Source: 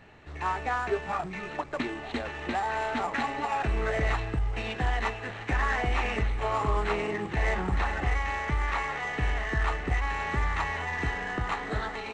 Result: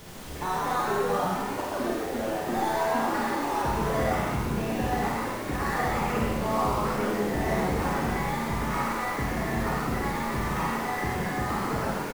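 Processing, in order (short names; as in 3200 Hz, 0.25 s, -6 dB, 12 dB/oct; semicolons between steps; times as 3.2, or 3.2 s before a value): LPF 2000 Hz 12 dB/oct; reverb removal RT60 1.5 s; HPF 120 Hz 12 dB/oct; tilt -2 dB/oct; limiter -24.5 dBFS, peak gain reduction 8.5 dB; in parallel at -8 dB: decimation with a swept rate 13×, swing 60% 1.6 Hz; on the sum: added noise pink -46 dBFS; on a send: frequency-shifting echo 0.128 s, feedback 51%, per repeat +88 Hz, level -3 dB; on the sum: Schroeder reverb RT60 0.83 s, combs from 31 ms, DRR -2.5 dB; gain -2 dB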